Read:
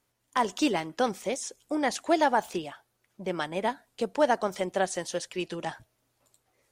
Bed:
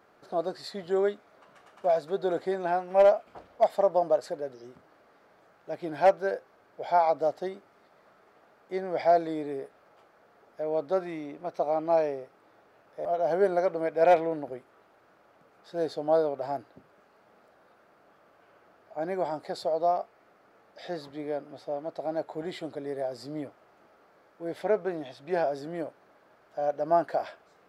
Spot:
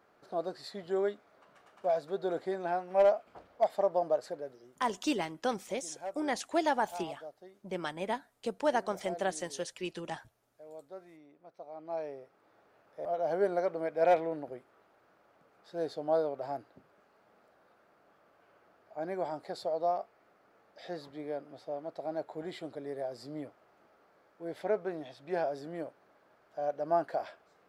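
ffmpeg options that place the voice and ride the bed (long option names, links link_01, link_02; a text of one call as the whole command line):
ffmpeg -i stem1.wav -i stem2.wav -filter_complex "[0:a]adelay=4450,volume=-5.5dB[link_01];[1:a]volume=9.5dB,afade=type=out:start_time=4.33:duration=0.59:silence=0.188365,afade=type=in:start_time=11.71:duration=0.94:silence=0.188365[link_02];[link_01][link_02]amix=inputs=2:normalize=0" out.wav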